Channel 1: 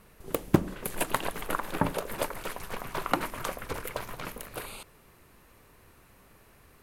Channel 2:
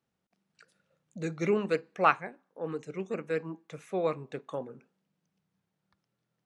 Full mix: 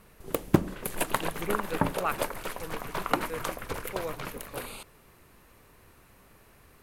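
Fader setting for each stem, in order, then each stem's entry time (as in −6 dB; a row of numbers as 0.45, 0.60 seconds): +0.5, −7.0 decibels; 0.00, 0.00 seconds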